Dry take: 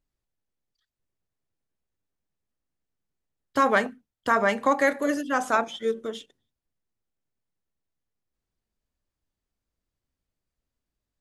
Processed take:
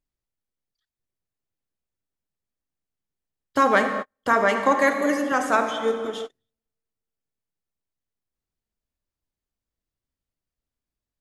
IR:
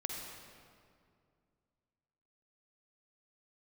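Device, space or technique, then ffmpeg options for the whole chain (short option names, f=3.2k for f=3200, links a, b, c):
keyed gated reverb: -filter_complex "[0:a]asettb=1/sr,asplit=3[a][b][c];[a]atrim=end=4.334[d];[b]atrim=start=4.33:end=5.32,asetpts=PTS-STARTPTS,afade=t=in:d=0.004:c=qsin,afade=t=out:st=0.986:d=0.004:c=qsin,highpass=180[e];[c]atrim=start=5.316[f];[d][e]acrossfade=d=0.004:c1=hsin:c2=qsin[g];[g][f]acrossfade=d=0.004:c1=qsin:c2=hsin,asplit=3[h][i][j];[1:a]atrim=start_sample=2205[k];[i][k]afir=irnorm=-1:irlink=0[l];[j]apad=whole_len=494009[m];[l][m]sidechaingate=range=-50dB:threshold=-44dB:ratio=16:detection=peak,volume=2dB[n];[h][n]amix=inputs=2:normalize=0,volume=-4dB"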